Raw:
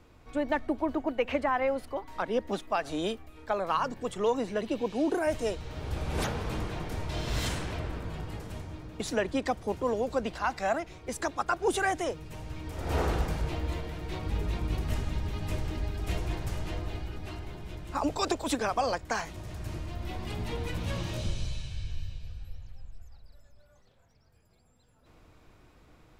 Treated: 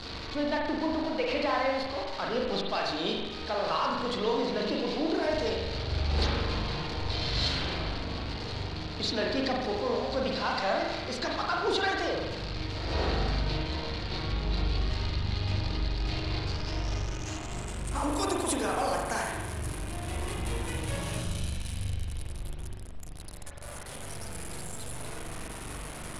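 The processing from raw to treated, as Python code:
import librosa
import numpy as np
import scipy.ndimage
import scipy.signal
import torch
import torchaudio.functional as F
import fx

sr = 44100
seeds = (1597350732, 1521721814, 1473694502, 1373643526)

y = x + 0.5 * 10.0 ** (-32.0 / 20.0) * np.sign(x)
y = fx.rev_spring(y, sr, rt60_s=1.2, pass_ms=(41,), chirp_ms=60, drr_db=-1.5)
y = fx.filter_sweep_lowpass(y, sr, from_hz=4400.0, to_hz=10000.0, start_s=16.41, end_s=18.16, q=6.1)
y = y * 10.0 ** (-6.0 / 20.0)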